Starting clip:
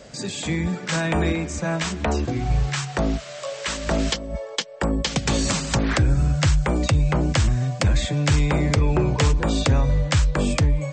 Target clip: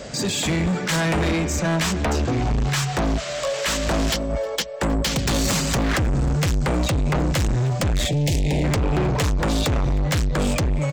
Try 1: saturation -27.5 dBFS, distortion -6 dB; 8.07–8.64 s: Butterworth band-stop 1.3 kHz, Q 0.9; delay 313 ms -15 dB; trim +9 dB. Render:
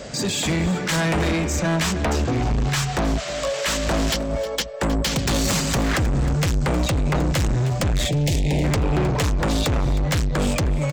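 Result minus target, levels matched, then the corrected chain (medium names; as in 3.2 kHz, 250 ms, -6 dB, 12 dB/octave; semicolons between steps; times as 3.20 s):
echo-to-direct +10 dB
saturation -27.5 dBFS, distortion -6 dB; 8.07–8.64 s: Butterworth band-stop 1.3 kHz, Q 0.9; delay 313 ms -25 dB; trim +9 dB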